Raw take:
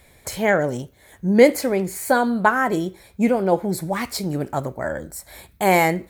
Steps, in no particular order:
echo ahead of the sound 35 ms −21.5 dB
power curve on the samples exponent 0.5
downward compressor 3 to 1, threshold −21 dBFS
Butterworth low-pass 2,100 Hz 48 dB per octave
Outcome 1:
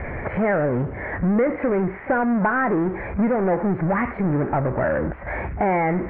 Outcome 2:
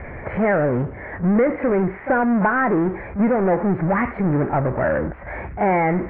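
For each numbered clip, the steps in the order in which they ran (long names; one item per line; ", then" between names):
power curve on the samples, then echo ahead of the sound, then downward compressor, then Butterworth low-pass
echo ahead of the sound, then downward compressor, then power curve on the samples, then Butterworth low-pass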